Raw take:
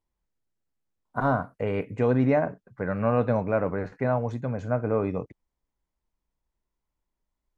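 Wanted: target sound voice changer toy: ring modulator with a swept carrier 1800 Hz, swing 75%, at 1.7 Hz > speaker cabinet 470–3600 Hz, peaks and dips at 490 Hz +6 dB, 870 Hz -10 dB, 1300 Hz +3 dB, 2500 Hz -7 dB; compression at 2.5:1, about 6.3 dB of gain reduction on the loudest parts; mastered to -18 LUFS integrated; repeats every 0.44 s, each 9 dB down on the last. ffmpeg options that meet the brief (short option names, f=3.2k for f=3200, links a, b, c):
-af "acompressor=threshold=-27dB:ratio=2.5,aecho=1:1:440|880|1320|1760:0.355|0.124|0.0435|0.0152,aeval=exprs='val(0)*sin(2*PI*1800*n/s+1800*0.75/1.7*sin(2*PI*1.7*n/s))':c=same,highpass=470,equalizer=f=490:t=q:w=4:g=6,equalizer=f=870:t=q:w=4:g=-10,equalizer=f=1.3k:t=q:w=4:g=3,equalizer=f=2.5k:t=q:w=4:g=-7,lowpass=f=3.6k:w=0.5412,lowpass=f=3.6k:w=1.3066,volume=16.5dB"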